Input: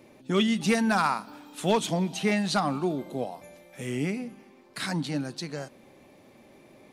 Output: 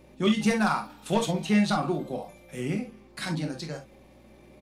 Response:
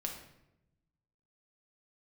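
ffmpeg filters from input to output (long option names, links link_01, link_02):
-filter_complex "[0:a]atempo=1.5[link_01];[1:a]atrim=start_sample=2205,atrim=end_sample=3087[link_02];[link_01][link_02]afir=irnorm=-1:irlink=0,aeval=exprs='val(0)+0.00126*(sin(2*PI*60*n/s)+sin(2*PI*2*60*n/s)/2+sin(2*PI*3*60*n/s)/3+sin(2*PI*4*60*n/s)/4+sin(2*PI*5*60*n/s)/5)':channel_layout=same"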